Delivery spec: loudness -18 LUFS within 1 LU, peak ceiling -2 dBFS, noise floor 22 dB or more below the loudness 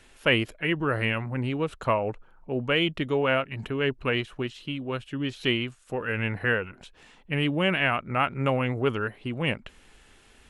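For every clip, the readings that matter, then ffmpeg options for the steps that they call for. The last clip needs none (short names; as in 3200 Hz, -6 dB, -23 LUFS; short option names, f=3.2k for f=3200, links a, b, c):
loudness -27.5 LUFS; peak -7.5 dBFS; loudness target -18.0 LUFS
-> -af "volume=9.5dB,alimiter=limit=-2dB:level=0:latency=1"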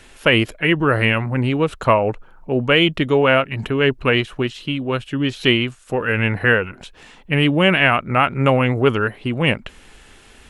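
loudness -18.0 LUFS; peak -2.0 dBFS; noise floor -47 dBFS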